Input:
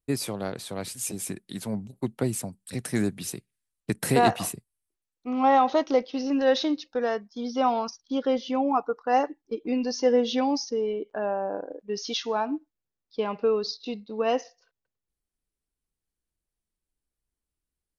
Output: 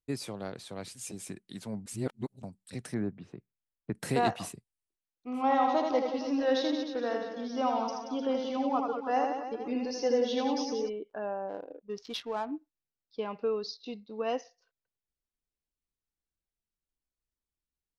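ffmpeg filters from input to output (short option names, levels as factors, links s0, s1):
-filter_complex "[0:a]asettb=1/sr,asplit=3[s0][s1][s2];[s0]atrim=end=2.944[s3];[s1]atrim=start=2.94:end=3.95,asetpts=PTS-STARTPTS,afade=t=in:d=0.004:c=qsin,afade=t=out:st=1.006:d=0.004:c=qsin,lowpass=1400[s4];[s2]atrim=start=3.946[s5];[s3][s4]acrossfade=d=0.004:c1=hsin:c2=qsin[s6];[s6][s5]acrossfade=d=0.004:c1=qsin:c2=hsin,asplit=3[s7][s8][s9];[s7]afade=t=out:st=5.33:d=0.02[s10];[s8]aecho=1:1:80|180|305|461.2|656.6|900.7:0.631|0.398|0.251|0.158|0.1|0.0631,afade=t=in:st=5.33:d=0.02,afade=t=out:st=10.88:d=0.02[s11];[s9]afade=t=in:st=10.88:d=0.02[s12];[s10][s11][s12]amix=inputs=3:normalize=0,asplit=3[s13][s14][s15];[s13]afade=t=out:st=11.48:d=0.02[s16];[s14]adynamicsmooth=sensitivity=6:basefreq=1100,afade=t=in:st=11.48:d=0.02,afade=t=out:st=12.51:d=0.02[s17];[s15]afade=t=in:st=12.51:d=0.02[s18];[s16][s17][s18]amix=inputs=3:normalize=0,asplit=3[s19][s20][s21];[s19]atrim=end=1.862[s22];[s20]atrim=start=1.858:end=2.432,asetpts=PTS-STARTPTS,areverse[s23];[s21]atrim=start=2.428[s24];[s22][s23]acrossfade=d=0.004:c1=hsin:c2=hsin[s25];[s25][s24]acrossfade=d=0.004:c1=hsin:c2=hsin,lowpass=8300,volume=0.447"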